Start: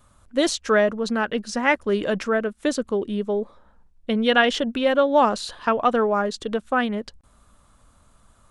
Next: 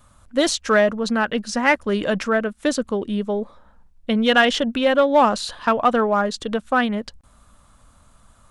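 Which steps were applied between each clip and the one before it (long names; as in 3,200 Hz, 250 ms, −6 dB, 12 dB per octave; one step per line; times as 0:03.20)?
parametric band 390 Hz −5 dB 0.54 octaves
in parallel at −6 dB: hard clipping −15.5 dBFS, distortion −13 dB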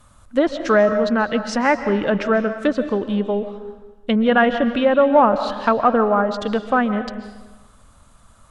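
treble cut that deepens with the level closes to 1,500 Hz, closed at −15.5 dBFS
on a send at −10 dB: convolution reverb RT60 1.2 s, pre-delay 100 ms
on the sum: level +2 dB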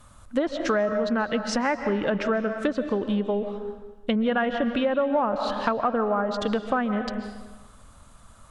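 downward compressor 4 to 1, threshold −22 dBFS, peak gain reduction 11.5 dB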